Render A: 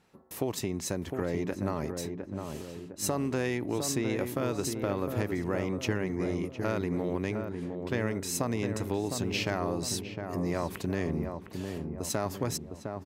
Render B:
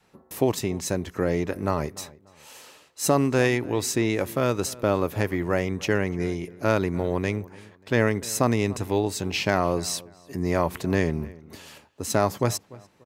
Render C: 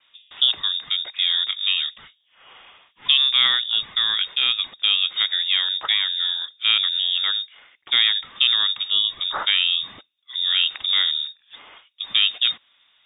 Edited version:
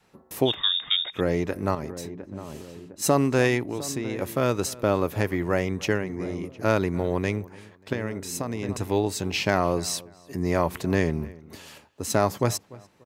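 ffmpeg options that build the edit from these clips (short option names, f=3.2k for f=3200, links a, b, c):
-filter_complex "[0:a]asplit=4[a][b][c][d];[1:a]asplit=6[e][f][g][h][i][j];[e]atrim=end=0.55[k];[2:a]atrim=start=0.45:end=1.21[l];[f]atrim=start=1.11:end=1.752[m];[a]atrim=start=1.748:end=3.022[n];[g]atrim=start=3.018:end=3.632[o];[b]atrim=start=3.628:end=4.222[p];[h]atrim=start=4.218:end=6.06[q];[c]atrim=start=5.9:end=6.67[r];[i]atrim=start=6.51:end=7.932[s];[d]atrim=start=7.928:end=8.692[t];[j]atrim=start=8.688[u];[k][l]acrossfade=d=0.1:c1=tri:c2=tri[v];[v][m]acrossfade=d=0.1:c1=tri:c2=tri[w];[w][n]acrossfade=d=0.004:c1=hsin:c2=hsin[x];[x][o]acrossfade=d=0.004:c1=hsin:c2=hsin[y];[y][p]acrossfade=d=0.004:c1=hsin:c2=hsin[z];[z][q]acrossfade=d=0.004:c1=hsin:c2=hsin[aa];[aa][r]acrossfade=d=0.16:c1=tri:c2=tri[ab];[ab][s]acrossfade=d=0.16:c1=tri:c2=tri[ac];[ac][t]acrossfade=d=0.004:c1=hsin:c2=hsin[ad];[ad][u]acrossfade=d=0.004:c1=hsin:c2=hsin"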